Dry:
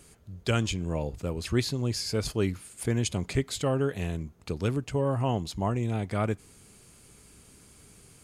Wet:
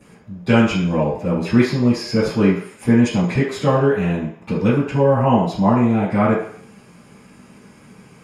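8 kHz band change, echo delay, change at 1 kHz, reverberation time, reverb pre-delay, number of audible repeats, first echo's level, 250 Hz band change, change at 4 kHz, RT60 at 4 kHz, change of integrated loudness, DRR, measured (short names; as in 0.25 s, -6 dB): -1.5 dB, none, +14.0 dB, 0.60 s, 3 ms, none, none, +15.5 dB, +4.0 dB, 0.65 s, +12.0 dB, -14.5 dB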